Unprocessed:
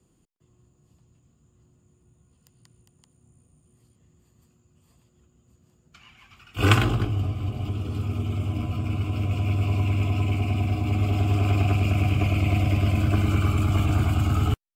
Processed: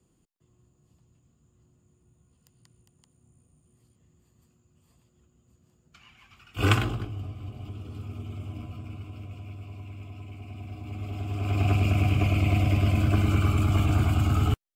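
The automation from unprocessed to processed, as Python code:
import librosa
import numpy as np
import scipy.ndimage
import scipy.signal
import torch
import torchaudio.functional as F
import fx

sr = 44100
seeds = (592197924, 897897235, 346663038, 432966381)

y = fx.gain(x, sr, db=fx.line((6.67, -3.0), (7.1, -10.0), (8.56, -10.0), (9.68, -18.0), (10.32, -18.0), (11.34, -9.5), (11.68, -1.0)))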